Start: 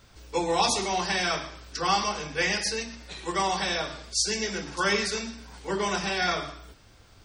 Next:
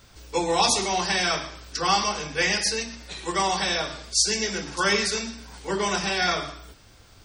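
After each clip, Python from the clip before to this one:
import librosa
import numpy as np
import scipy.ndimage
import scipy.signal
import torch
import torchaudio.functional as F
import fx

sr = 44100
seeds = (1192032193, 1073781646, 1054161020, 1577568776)

y = fx.high_shelf(x, sr, hz=4700.0, db=4.5)
y = y * 10.0 ** (2.0 / 20.0)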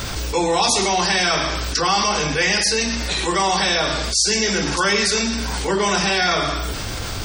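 y = fx.env_flatten(x, sr, amount_pct=70)
y = y * 10.0 ** (1.5 / 20.0)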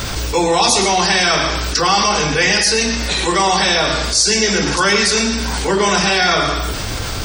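y = fx.rev_plate(x, sr, seeds[0], rt60_s=0.54, hf_ratio=0.55, predelay_ms=100, drr_db=12.0)
y = y * 10.0 ** (4.0 / 20.0)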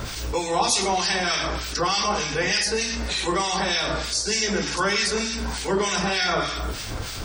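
y = fx.harmonic_tremolo(x, sr, hz=3.3, depth_pct=70, crossover_hz=1600.0)
y = y * 10.0 ** (-5.5 / 20.0)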